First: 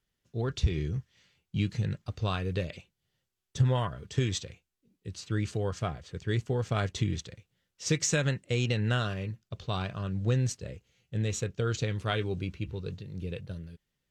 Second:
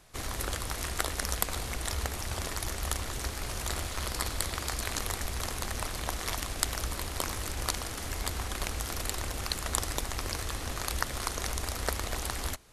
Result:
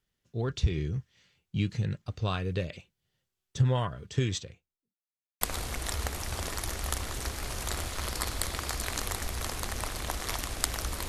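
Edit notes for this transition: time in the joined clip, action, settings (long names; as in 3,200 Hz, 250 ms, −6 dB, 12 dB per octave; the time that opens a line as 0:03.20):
first
0:04.30–0:05.00: fade out and dull
0:05.00–0:05.41: silence
0:05.41: continue with second from 0:01.40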